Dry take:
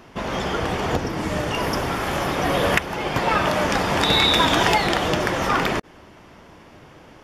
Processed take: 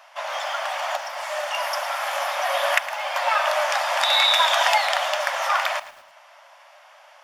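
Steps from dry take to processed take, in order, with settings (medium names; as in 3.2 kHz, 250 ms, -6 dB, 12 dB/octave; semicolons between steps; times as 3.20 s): brick-wall FIR high-pass 540 Hz; bit-crushed delay 111 ms, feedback 35%, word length 7-bit, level -14.5 dB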